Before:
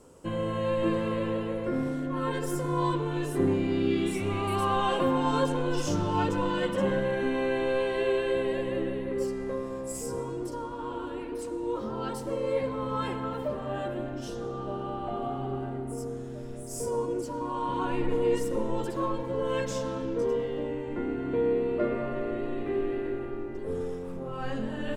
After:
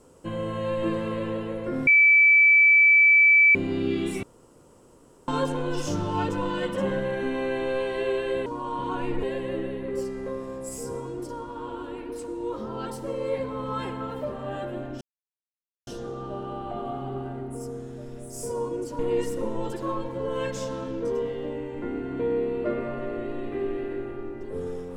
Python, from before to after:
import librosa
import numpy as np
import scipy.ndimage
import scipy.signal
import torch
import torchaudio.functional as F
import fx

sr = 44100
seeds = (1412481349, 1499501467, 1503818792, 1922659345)

y = fx.edit(x, sr, fx.bleep(start_s=1.87, length_s=1.68, hz=2310.0, db=-13.0),
    fx.room_tone_fill(start_s=4.23, length_s=1.05),
    fx.insert_silence(at_s=14.24, length_s=0.86),
    fx.move(start_s=17.36, length_s=0.77, to_s=8.46), tone=tone)